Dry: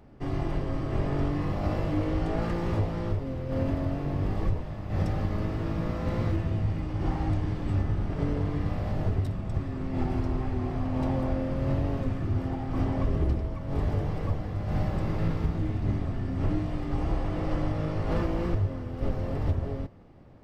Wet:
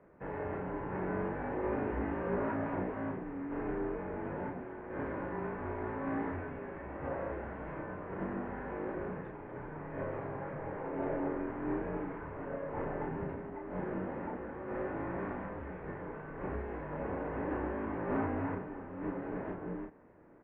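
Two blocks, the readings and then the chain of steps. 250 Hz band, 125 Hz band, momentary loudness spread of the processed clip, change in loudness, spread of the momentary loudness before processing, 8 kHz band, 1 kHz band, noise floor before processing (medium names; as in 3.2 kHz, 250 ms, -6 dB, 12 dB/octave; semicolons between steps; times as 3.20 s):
-7.0 dB, -16.5 dB, 8 LU, -8.5 dB, 3 LU, no reading, -2.0 dB, -35 dBFS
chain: doubling 33 ms -3.5 dB; mistuned SSB -240 Hz 440–2300 Hz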